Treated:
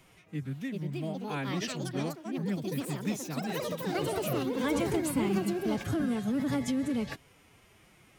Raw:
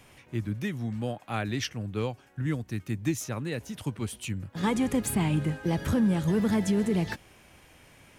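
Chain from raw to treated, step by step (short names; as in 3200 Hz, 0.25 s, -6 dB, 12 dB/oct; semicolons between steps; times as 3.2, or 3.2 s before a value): formant-preserving pitch shift +4.5 st; echoes that change speed 0.475 s, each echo +5 st, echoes 3; gain -4.5 dB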